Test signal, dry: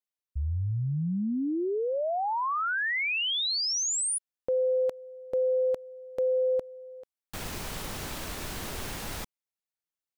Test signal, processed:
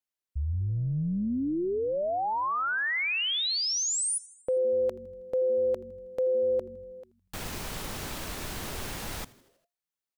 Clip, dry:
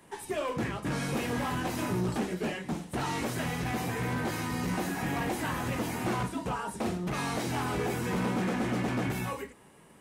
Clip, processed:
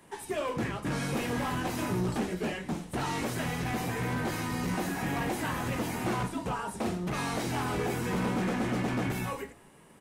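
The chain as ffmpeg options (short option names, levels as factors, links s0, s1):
-filter_complex "[0:a]asplit=6[s0][s1][s2][s3][s4][s5];[s1]adelay=80,afreqshift=-140,volume=0.0891[s6];[s2]adelay=160,afreqshift=-280,volume=0.0537[s7];[s3]adelay=240,afreqshift=-420,volume=0.032[s8];[s4]adelay=320,afreqshift=-560,volume=0.0193[s9];[s5]adelay=400,afreqshift=-700,volume=0.0116[s10];[s0][s6][s7][s8][s9][s10]amix=inputs=6:normalize=0"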